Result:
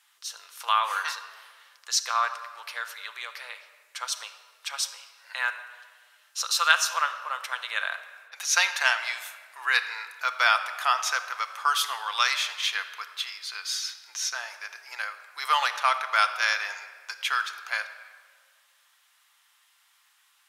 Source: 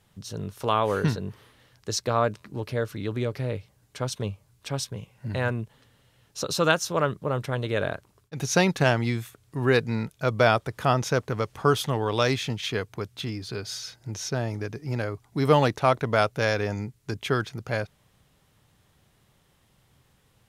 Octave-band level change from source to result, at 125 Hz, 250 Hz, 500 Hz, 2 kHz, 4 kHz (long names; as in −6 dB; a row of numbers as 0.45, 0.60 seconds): below −40 dB, below −40 dB, −18.5 dB, +5.0 dB, +5.0 dB